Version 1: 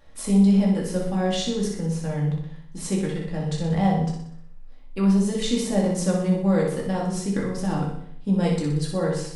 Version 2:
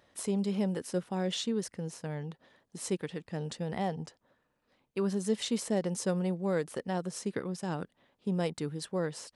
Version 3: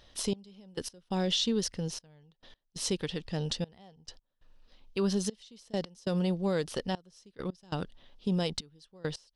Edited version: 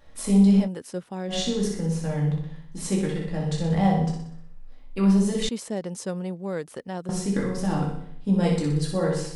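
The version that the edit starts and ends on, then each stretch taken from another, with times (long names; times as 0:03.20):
1
0:00.64–0:01.33: punch in from 2, crossfade 0.10 s
0:05.49–0:07.09: punch in from 2
not used: 3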